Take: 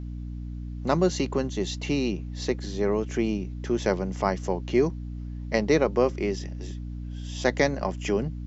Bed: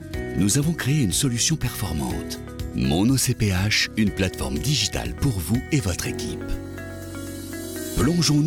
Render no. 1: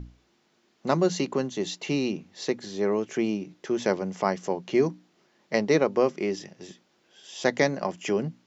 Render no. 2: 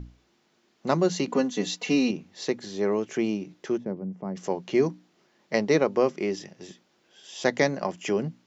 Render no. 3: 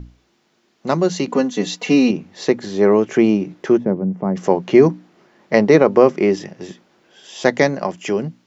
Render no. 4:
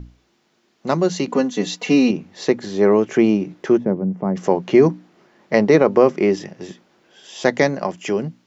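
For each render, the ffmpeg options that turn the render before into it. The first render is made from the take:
-af "bandreject=f=60:t=h:w=6,bandreject=f=120:t=h:w=6,bandreject=f=180:t=h:w=6,bandreject=f=240:t=h:w=6,bandreject=f=300:t=h:w=6"
-filter_complex "[0:a]asettb=1/sr,asplit=3[s0][s1][s2];[s0]atrim=end=1.274[s3];[s1]atrim=start=1.27:end=2.11,asetpts=PTS-STARTPTS,afade=t=in:d=0.004:c=qsin,afade=t=out:st=0.836:d=0.004:c=qsin,aecho=1:1:4.1:1,atrim=end_sample=37044[s4];[s2]atrim=start=2.106[s5];[s3][s4]acrossfade=d=0.004:c1=hsin:c2=qsin[s6];[s6][s5]acrossfade=d=0.004:c1=qsin:c2=hsin,asplit=3[s7][s8][s9];[s7]afade=t=out:st=3.76:d=0.02[s10];[s8]bandpass=f=170:t=q:w=1.2,afade=t=in:st=3.76:d=0.02,afade=t=out:st=4.35:d=0.02[s11];[s9]afade=t=in:st=4.35:d=0.02[s12];[s10][s11][s12]amix=inputs=3:normalize=0"
-filter_complex "[0:a]acrossover=split=2300[s0][s1];[s0]dynaudnorm=f=770:g=5:m=3.76[s2];[s2][s1]amix=inputs=2:normalize=0,alimiter=level_in=1.68:limit=0.891:release=50:level=0:latency=1"
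-af "volume=0.891,alimiter=limit=0.708:level=0:latency=1"

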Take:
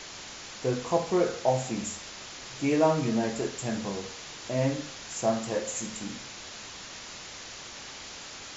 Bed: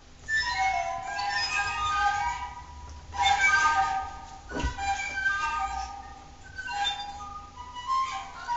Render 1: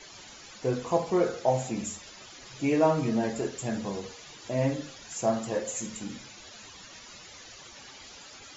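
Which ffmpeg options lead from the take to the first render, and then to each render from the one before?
-af "afftdn=nr=12:nf=-43"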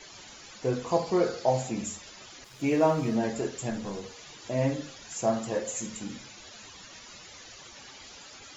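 -filter_complex "[0:a]asettb=1/sr,asplit=3[s0][s1][s2];[s0]atrim=end=0.894[s3];[s1]atrim=start=0.89:end=1.62,asetpts=PTS-STARTPTS,afade=t=in:d=0.004:c=qsin,afade=t=out:st=0.726:d=0.004:c=qsin,equalizer=f=4600:t=o:w=0.26:g=8.5[s4];[s2]atrim=start=1.616[s5];[s3][s4]acrossfade=d=0.004:c1=hsin:c2=qsin[s6];[s6][s5]acrossfade=d=0.004:c1=qsin:c2=hsin,asettb=1/sr,asplit=3[s7][s8][s9];[s7]atrim=end=2.444[s10];[s8]atrim=start=2.44:end=3.16,asetpts=PTS-STARTPTS,afade=t=in:d=0.004:c=qsin,afade=t=out:st=0.716:d=0.004:c=qsin,aeval=exprs='sgn(val(0))*max(abs(val(0))-0.00282,0)':c=same[s11];[s9]atrim=start=3.156[s12];[s10][s11]acrossfade=d=0.004:c1=hsin:c2=qsin[s13];[s13][s12]acrossfade=d=0.004:c1=qsin:c2=hsin,asettb=1/sr,asplit=3[s14][s15][s16];[s14]atrim=end=3.704[s17];[s15]atrim=start=3.7:end=4.16,asetpts=PTS-STARTPTS,afade=t=in:d=0.004:c=qsin,afade=t=out:st=0.456:d=0.004:c=qsin,aeval=exprs='(tanh(15.8*val(0)+0.4)-tanh(0.4))/15.8':c=same[s18];[s16]atrim=start=4.156[s19];[s17][s18]acrossfade=d=0.004:c1=hsin:c2=qsin[s20];[s20][s19]acrossfade=d=0.004:c1=qsin:c2=hsin"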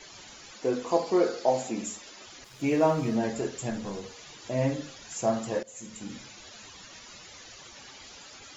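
-filter_complex "[0:a]asettb=1/sr,asplit=3[s0][s1][s2];[s0]atrim=end=0.544[s3];[s1]atrim=start=0.54:end=2.27,asetpts=PTS-STARTPTS,afade=t=in:d=0.004:c=qsin,afade=t=out:st=1.726:d=0.004:c=qsin,lowshelf=f=190:t=q:w=1.5:g=-9[s4];[s2]atrim=start=2.266[s5];[s3][s4]acrossfade=d=0.004:c1=hsin:c2=qsin[s6];[s6][s5]acrossfade=d=0.004:c1=qsin:c2=hsin,asplit=2[s7][s8];[s7]atrim=end=5.63,asetpts=PTS-STARTPTS,afade=t=out:st=5.626:d=0.004:c=hsin:silence=0.105925[s9];[s8]atrim=start=5.63,asetpts=PTS-STARTPTS,afade=t=in:d=0.55:silence=0.105925[s10];[s9][s10]concat=n=2:v=0:a=1"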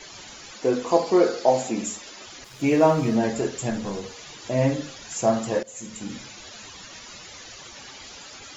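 -af "volume=1.88"

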